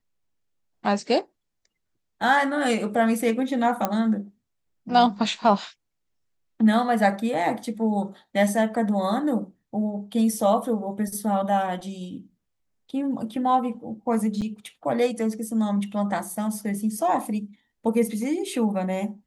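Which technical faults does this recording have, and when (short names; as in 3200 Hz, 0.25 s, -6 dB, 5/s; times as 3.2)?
3.85 pop -9 dBFS
14.41–14.42 gap 7.6 ms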